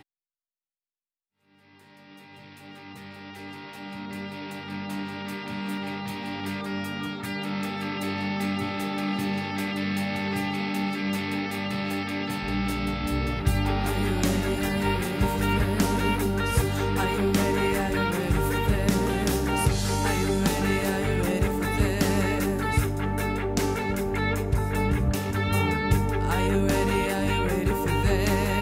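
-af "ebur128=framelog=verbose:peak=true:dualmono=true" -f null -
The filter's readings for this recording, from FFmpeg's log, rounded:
Integrated loudness:
  I:         -23.4 LUFS
  Threshold: -33.8 LUFS
Loudness range:
  LRA:        10.4 LU
  Threshold: -43.9 LUFS
  LRA low:   -32.1 LUFS
  LRA high:  -21.7 LUFS
True peak:
  Peak:       -9.7 dBFS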